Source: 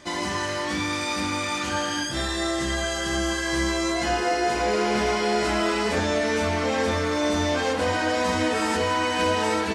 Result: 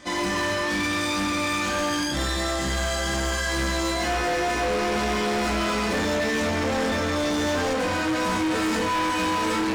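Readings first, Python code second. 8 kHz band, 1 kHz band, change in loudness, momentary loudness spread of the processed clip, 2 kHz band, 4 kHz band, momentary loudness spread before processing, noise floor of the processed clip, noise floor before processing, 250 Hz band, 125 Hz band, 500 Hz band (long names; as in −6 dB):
+0.5 dB, −0.5 dB, 0.0 dB, 2 LU, +0.5 dB, 0.0 dB, 3 LU, −26 dBFS, −28 dBFS, +1.0 dB, +0.5 dB, −1.5 dB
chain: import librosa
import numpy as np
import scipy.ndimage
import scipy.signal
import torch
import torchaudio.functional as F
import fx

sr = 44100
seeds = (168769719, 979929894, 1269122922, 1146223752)

y = fx.room_shoebox(x, sr, seeds[0], volume_m3=440.0, walls='furnished', distance_m=2.0)
y = np.clip(y, -10.0 ** (-22.0 / 20.0), 10.0 ** (-22.0 / 20.0))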